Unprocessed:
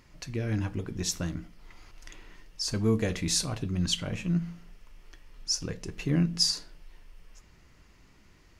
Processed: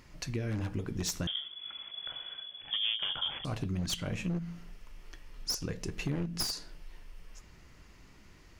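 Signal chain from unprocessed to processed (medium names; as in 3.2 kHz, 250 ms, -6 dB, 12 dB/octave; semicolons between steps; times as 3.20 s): one-sided wavefolder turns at -25 dBFS; compression 4:1, threshold -33 dBFS, peak gain reduction 11 dB; 1.27–3.45 s: frequency inversion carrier 3.4 kHz; trim +2 dB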